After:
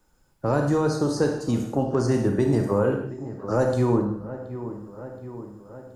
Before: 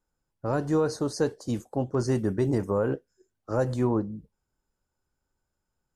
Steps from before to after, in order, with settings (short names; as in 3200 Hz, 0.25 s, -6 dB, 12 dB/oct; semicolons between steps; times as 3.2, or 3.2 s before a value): dark delay 0.724 s, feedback 48%, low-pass 1700 Hz, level -18 dB; on a send at -3.5 dB: reverb, pre-delay 32 ms; on the sum: three-band squash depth 40%; gain +3 dB